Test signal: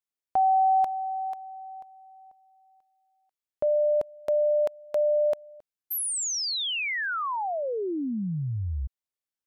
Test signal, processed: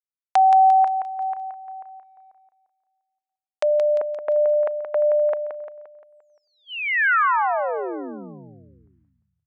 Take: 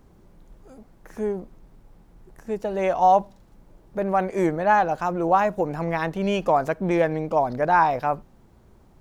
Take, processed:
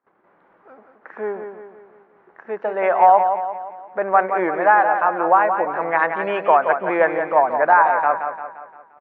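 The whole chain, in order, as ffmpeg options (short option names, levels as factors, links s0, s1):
-filter_complex "[0:a]lowpass=f=1700:w=0.5412,lowpass=f=1700:w=1.3066,agate=range=0.0631:threshold=0.00282:ratio=16:release=363:detection=peak,highpass=360,tiltshelf=f=910:g=-9.5,alimiter=limit=0.251:level=0:latency=1:release=492,asplit=2[s0][s1];[s1]aecho=0:1:174|348|522|696|870|1044:0.422|0.202|0.0972|0.0466|0.0224|0.0107[s2];[s0][s2]amix=inputs=2:normalize=0,volume=2.66"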